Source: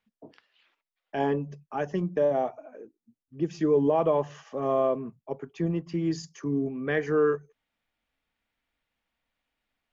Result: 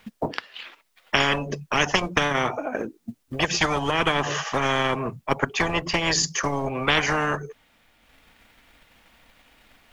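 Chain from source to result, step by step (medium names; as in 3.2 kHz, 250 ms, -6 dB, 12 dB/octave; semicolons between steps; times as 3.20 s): dynamic bell 350 Hz, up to +5 dB, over -38 dBFS, Q 1.4; transient shaper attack +7 dB, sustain -4 dB; spectrum-flattening compressor 10:1; trim +2.5 dB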